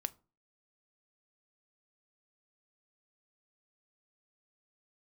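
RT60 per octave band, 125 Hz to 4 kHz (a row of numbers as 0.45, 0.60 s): 0.45, 0.45, 0.35, 0.35, 0.25, 0.20 s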